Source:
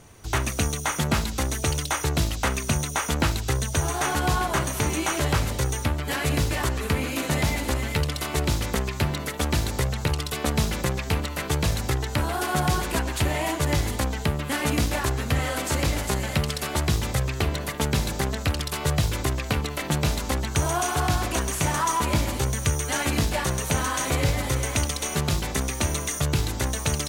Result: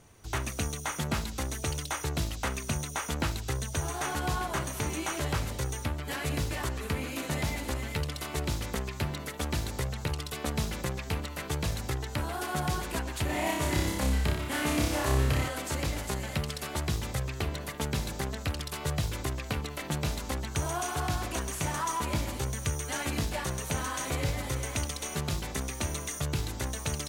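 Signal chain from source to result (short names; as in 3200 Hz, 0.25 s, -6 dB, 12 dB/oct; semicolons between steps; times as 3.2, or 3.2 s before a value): 13.26–15.48 flutter echo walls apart 5.2 m, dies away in 0.78 s; gain -7.5 dB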